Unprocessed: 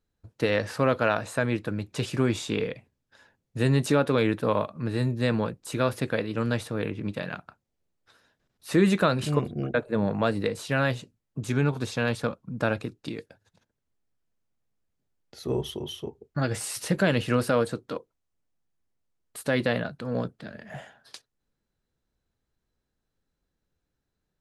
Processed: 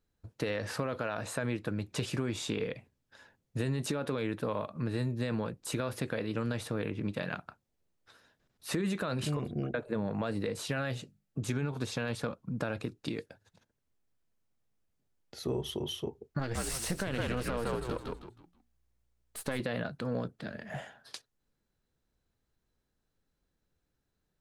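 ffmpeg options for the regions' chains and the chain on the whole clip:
ffmpeg -i in.wav -filter_complex "[0:a]asettb=1/sr,asplit=3[link_01][link_02][link_03];[link_01]atrim=end=10.764[link_04];[link_02]atrim=start=10.76:end=11.42,asetpts=PTS-STARTPTS,afade=type=in:duration=0.004:curve=qsin,afade=type=out:start_time=0.656:duration=0.004:curve=qsin,asuperstop=centerf=1000:order=4:qfactor=6.6,bandreject=frequency=50:width_type=h:width=6,bandreject=frequency=100:width_type=h:width=6,bandreject=frequency=150:width_type=h:width=6,bandreject=frequency=200:width_type=h:width=6[link_05];[link_03]atrim=start=11.416[link_06];[link_04][link_05]acrossfade=duration=0.004:curve1=hsin:curve2=qsin[link_07];[link_07][link_06]acrossfade=duration=0.004:curve1=qsin:curve2=hsin,asettb=1/sr,asplit=3[link_08][link_09][link_10];[link_08]atrim=end=16.394[link_11];[link_09]atrim=start=16.39:end=19.6,asetpts=PTS-STARTPTS,afade=type=in:duration=0.004:curve=qsin,afade=type=out:start_time=3.206:duration=0.004:curve=qsin,aeval=exprs='if(lt(val(0),0),0.447*val(0),val(0))':channel_layout=same,asplit=5[link_12][link_13][link_14][link_15][link_16];[link_13]adelay=159,afreqshift=-59,volume=-4dB[link_17];[link_14]adelay=318,afreqshift=-118,volume=-14.2dB[link_18];[link_15]adelay=477,afreqshift=-177,volume=-24.3dB[link_19];[link_16]adelay=636,afreqshift=-236,volume=-34.5dB[link_20];[link_12][link_17][link_18][link_19][link_20]amix=inputs=5:normalize=0,atrim=end_sample=141561[link_21];[link_10]atrim=start=19.596[link_22];[link_11][link_21]acrossfade=duration=0.004:curve1=hsin:curve2=qsin[link_23];[link_23][link_22]acrossfade=duration=0.004:curve1=qsin:curve2=hsin,alimiter=limit=-16.5dB:level=0:latency=1:release=32,acompressor=threshold=-30dB:ratio=4" out.wav

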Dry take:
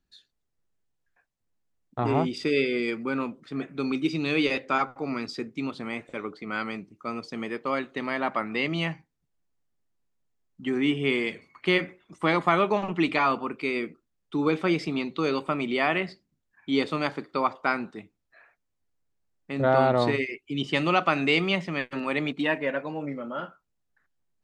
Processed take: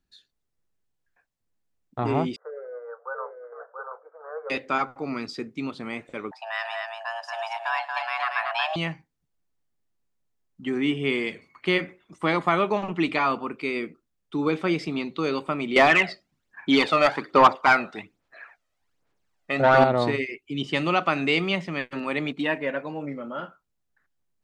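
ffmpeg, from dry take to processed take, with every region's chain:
ffmpeg -i in.wav -filter_complex "[0:a]asettb=1/sr,asplit=3[link_01][link_02][link_03];[link_01]atrim=end=2.364[link_04];[link_02]atrim=start=2.36:end=4.5,asetpts=PTS-STARTPTS,afade=type=in:duration=0.004:curve=qsin,afade=type=out:start_time=2.136:duration=0.004:curve=qsin,asuperpass=centerf=860:order=20:qfactor=0.78,aecho=1:1:683:0.562,atrim=end_sample=94374[link_05];[link_03]atrim=start=4.496[link_06];[link_04][link_05]acrossfade=duration=0.004:curve1=hsin:curve2=qsin[link_07];[link_07][link_06]acrossfade=duration=0.004:curve1=qsin:curve2=hsin,asettb=1/sr,asplit=3[link_08][link_09][link_10];[link_08]atrim=end=6.314[link_11];[link_09]atrim=start=6.31:end=8.76,asetpts=PTS-STARTPTS,afade=type=in:duration=0.004:curve=qsin,afade=type=out:start_time=2.446:duration=0.004:curve=qsin,afreqshift=460,aecho=1:1:106|231:0.119|0.631,atrim=end_sample=108045[link_12];[link_10]atrim=start=8.756[link_13];[link_11][link_12]acrossfade=duration=0.004:curve1=hsin:curve2=qsin[link_14];[link_14][link_13]acrossfade=duration=0.004:curve1=qsin:curve2=hsin,asettb=1/sr,asplit=3[link_15][link_16][link_17];[link_15]atrim=end=15.764[link_18];[link_16]atrim=start=15.76:end=19.84,asetpts=PTS-STARTPTS,afade=type=in:duration=0.004:curve=qsin,afade=type=out:start_time=4.076:duration=0.004:curve=qsin,aphaser=in_gain=1:out_gain=1:delay=1.6:decay=0.57:speed=1.2:type=sinusoidal,asplit=2[link_19][link_20];[link_20]highpass=frequency=720:poles=1,volume=17dB,asoftclip=type=tanh:threshold=-5.5dB[link_21];[link_19][link_21]amix=inputs=2:normalize=0,lowpass=frequency=3000:poles=1,volume=-6dB[link_22];[link_17]atrim=start=19.836[link_23];[link_18][link_22]acrossfade=duration=0.004:curve1=hsin:curve2=qsin[link_24];[link_24][link_23]acrossfade=duration=0.004:curve1=qsin:curve2=hsin" out.wav

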